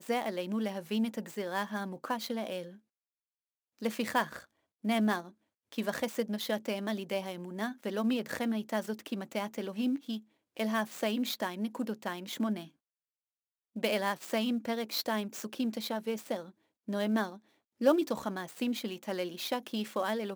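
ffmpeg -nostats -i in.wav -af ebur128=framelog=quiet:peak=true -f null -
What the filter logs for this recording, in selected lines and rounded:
Integrated loudness:
  I:         -34.3 LUFS
  Threshold: -44.5 LUFS
Loudness range:
  LRA:         3.1 LU
  Threshold: -54.9 LUFS
  LRA low:   -36.7 LUFS
  LRA high:  -33.5 LUFS
True peak:
  Peak:      -13.7 dBFS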